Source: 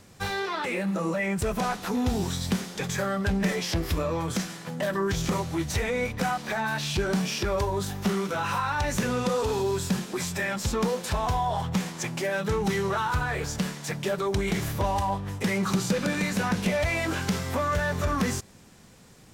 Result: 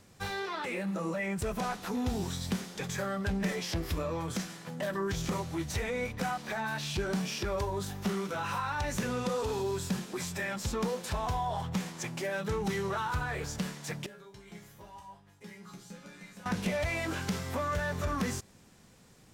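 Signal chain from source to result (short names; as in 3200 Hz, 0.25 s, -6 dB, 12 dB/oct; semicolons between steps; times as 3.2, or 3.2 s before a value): 14.06–16.46 resonator bank C#3 major, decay 0.33 s; gain -6 dB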